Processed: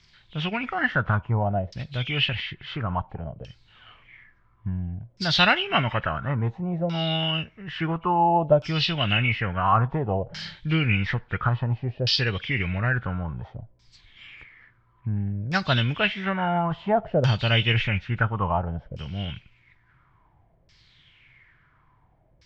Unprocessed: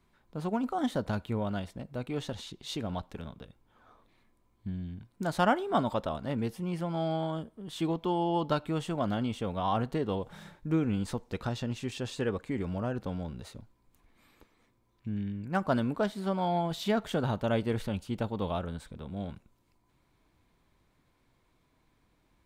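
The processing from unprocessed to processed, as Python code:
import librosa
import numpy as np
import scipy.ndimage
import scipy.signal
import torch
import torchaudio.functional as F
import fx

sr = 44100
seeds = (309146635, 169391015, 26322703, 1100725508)

y = fx.freq_compress(x, sr, knee_hz=2200.0, ratio=1.5)
y = fx.graphic_eq(y, sr, hz=(125, 250, 500, 1000, 2000, 4000, 8000), db=(7, -10, -6, -6, 7, 7, 5))
y = fx.filter_lfo_lowpass(y, sr, shape='saw_down', hz=0.58, low_hz=540.0, high_hz=5300.0, q=5.2)
y = F.gain(torch.from_numpy(y), 7.5).numpy()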